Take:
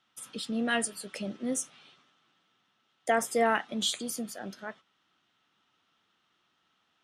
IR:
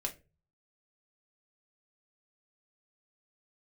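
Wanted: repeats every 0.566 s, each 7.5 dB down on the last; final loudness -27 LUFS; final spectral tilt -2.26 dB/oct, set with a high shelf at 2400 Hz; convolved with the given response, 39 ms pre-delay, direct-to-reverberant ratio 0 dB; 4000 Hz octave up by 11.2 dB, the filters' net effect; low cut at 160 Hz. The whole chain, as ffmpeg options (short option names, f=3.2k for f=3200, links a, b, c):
-filter_complex "[0:a]highpass=160,highshelf=f=2.4k:g=7,equalizer=f=4k:t=o:g=8,aecho=1:1:566|1132|1698|2264|2830:0.422|0.177|0.0744|0.0312|0.0131,asplit=2[a][b];[1:a]atrim=start_sample=2205,adelay=39[c];[b][c]afir=irnorm=-1:irlink=0,volume=-1dB[d];[a][d]amix=inputs=2:normalize=0,volume=-3.5dB"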